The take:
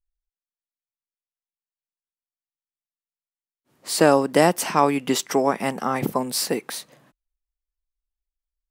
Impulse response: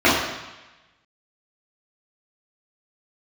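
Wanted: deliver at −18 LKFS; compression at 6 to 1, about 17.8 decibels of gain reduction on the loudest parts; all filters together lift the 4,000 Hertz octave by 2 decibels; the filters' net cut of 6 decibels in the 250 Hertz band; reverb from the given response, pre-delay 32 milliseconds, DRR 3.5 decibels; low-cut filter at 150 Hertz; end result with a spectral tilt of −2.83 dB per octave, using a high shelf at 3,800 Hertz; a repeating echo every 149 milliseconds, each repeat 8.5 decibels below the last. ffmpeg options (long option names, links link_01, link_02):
-filter_complex "[0:a]highpass=150,equalizer=frequency=250:width_type=o:gain=-7,highshelf=frequency=3800:gain=-8.5,equalizer=frequency=4000:width_type=o:gain=8.5,acompressor=threshold=-32dB:ratio=6,aecho=1:1:149|298|447|596:0.376|0.143|0.0543|0.0206,asplit=2[link_01][link_02];[1:a]atrim=start_sample=2205,adelay=32[link_03];[link_02][link_03]afir=irnorm=-1:irlink=0,volume=-29dB[link_04];[link_01][link_04]amix=inputs=2:normalize=0,volume=16dB"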